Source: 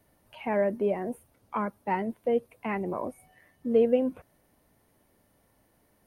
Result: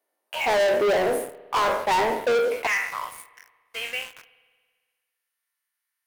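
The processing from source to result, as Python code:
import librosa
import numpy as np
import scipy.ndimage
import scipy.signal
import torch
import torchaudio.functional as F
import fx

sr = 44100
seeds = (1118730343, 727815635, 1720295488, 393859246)

y = fx.spec_trails(x, sr, decay_s=0.52)
y = fx.highpass(y, sr, hz=fx.steps((0.0, 380.0), (2.67, 1400.0)), slope=24)
y = fx.leveller(y, sr, passes=5)
y = fx.rev_spring(y, sr, rt60_s=1.6, pass_ms=(56,), chirp_ms=40, drr_db=18.0)
y = y * 10.0 ** (-1.5 / 20.0)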